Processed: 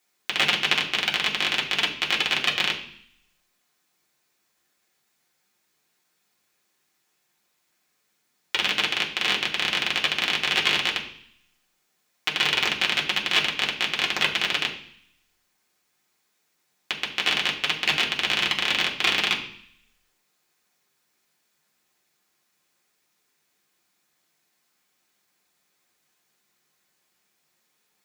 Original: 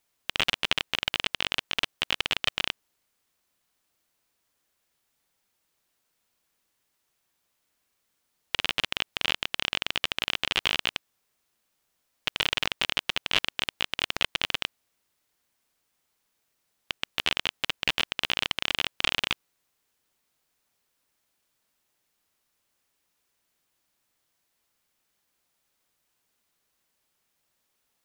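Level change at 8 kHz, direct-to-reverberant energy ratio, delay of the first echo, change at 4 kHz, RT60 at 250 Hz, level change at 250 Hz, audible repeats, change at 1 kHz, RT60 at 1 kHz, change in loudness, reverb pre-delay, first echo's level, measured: +5.0 dB, −3.0 dB, no echo audible, +4.5 dB, 0.80 s, +5.5 dB, no echo audible, +5.5 dB, 0.65 s, +5.0 dB, 3 ms, no echo audible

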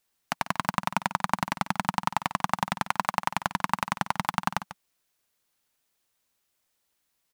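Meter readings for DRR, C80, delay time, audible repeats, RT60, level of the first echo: no reverb audible, no reverb audible, 144 ms, 1, no reverb audible, −13.5 dB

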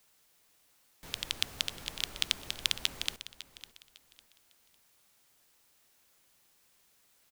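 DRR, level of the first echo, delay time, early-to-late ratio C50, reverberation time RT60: no reverb audible, −15.5 dB, 553 ms, no reverb audible, no reverb audible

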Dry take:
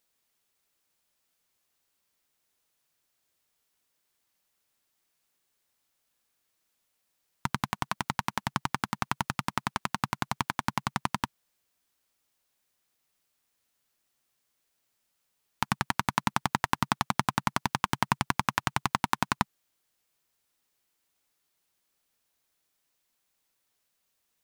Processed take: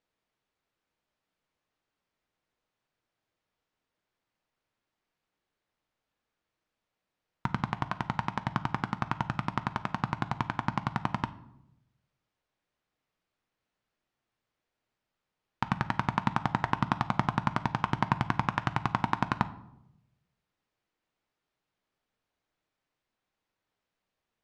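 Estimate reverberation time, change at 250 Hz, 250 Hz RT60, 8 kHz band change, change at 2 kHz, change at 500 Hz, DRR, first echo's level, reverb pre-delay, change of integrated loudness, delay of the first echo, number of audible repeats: 0.85 s, +1.5 dB, 1.1 s, below −15 dB, −3.0 dB, +0.5 dB, 11.0 dB, no echo audible, 6 ms, −1.0 dB, no echo audible, no echo audible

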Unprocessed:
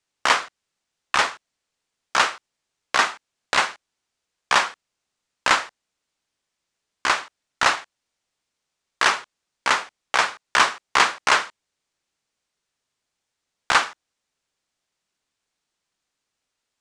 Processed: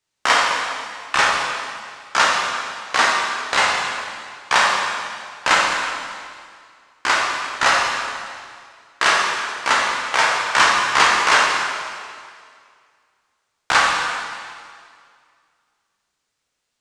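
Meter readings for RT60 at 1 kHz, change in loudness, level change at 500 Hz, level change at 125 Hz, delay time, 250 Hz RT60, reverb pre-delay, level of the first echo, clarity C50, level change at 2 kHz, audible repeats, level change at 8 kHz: 2.1 s, +3.5 dB, +5.0 dB, +5.5 dB, no echo audible, 2.1 s, 5 ms, no echo audible, 0.0 dB, +5.0 dB, no echo audible, +5.0 dB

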